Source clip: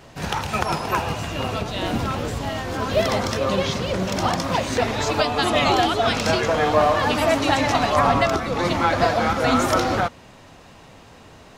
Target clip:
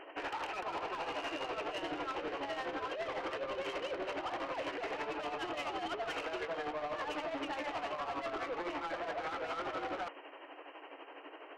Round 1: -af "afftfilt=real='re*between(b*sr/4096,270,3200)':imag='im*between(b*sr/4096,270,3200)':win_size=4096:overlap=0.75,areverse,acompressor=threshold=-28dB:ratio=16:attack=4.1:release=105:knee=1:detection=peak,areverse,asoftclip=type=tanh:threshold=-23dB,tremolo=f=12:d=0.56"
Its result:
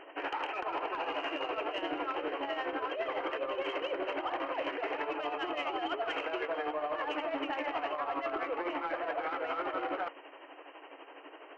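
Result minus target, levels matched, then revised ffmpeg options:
soft clip: distortion -12 dB
-af "afftfilt=real='re*between(b*sr/4096,270,3200)':imag='im*between(b*sr/4096,270,3200)':win_size=4096:overlap=0.75,areverse,acompressor=threshold=-28dB:ratio=16:attack=4.1:release=105:knee=1:detection=peak,areverse,asoftclip=type=tanh:threshold=-33dB,tremolo=f=12:d=0.56"

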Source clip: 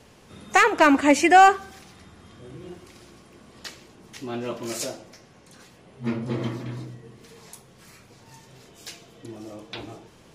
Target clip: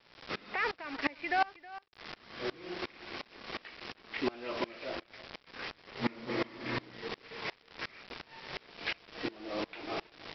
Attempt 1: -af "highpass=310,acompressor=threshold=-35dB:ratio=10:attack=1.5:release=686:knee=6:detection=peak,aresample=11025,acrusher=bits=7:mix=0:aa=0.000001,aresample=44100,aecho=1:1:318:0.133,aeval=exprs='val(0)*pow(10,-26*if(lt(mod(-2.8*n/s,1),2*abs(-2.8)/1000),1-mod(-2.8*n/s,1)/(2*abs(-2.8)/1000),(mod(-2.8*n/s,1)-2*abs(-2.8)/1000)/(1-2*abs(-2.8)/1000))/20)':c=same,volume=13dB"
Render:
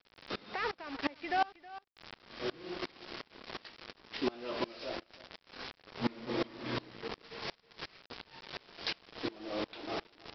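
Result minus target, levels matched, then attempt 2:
2000 Hz band -3.5 dB
-af "highpass=310,acompressor=threshold=-35dB:ratio=10:attack=1.5:release=686:knee=6:detection=peak,lowpass=f=2.3k:t=q:w=2.3,aresample=11025,acrusher=bits=7:mix=0:aa=0.000001,aresample=44100,aecho=1:1:318:0.133,aeval=exprs='val(0)*pow(10,-26*if(lt(mod(-2.8*n/s,1),2*abs(-2.8)/1000),1-mod(-2.8*n/s,1)/(2*abs(-2.8)/1000),(mod(-2.8*n/s,1)-2*abs(-2.8)/1000)/(1-2*abs(-2.8)/1000))/20)':c=same,volume=13dB"

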